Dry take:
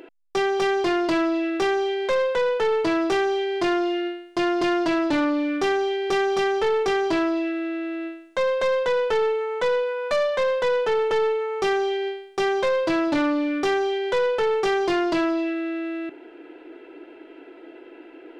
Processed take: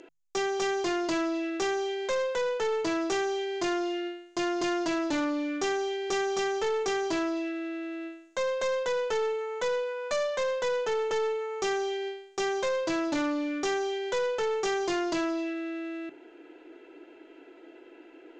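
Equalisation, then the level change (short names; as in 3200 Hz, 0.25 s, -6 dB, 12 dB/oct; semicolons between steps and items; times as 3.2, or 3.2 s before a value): synth low-pass 6800 Hz, resonance Q 4.9; notches 50/100/150 Hz; -7.0 dB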